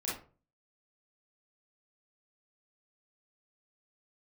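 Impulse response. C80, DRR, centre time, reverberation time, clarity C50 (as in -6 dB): 10.5 dB, -7.0 dB, 45 ms, 0.40 s, 2.5 dB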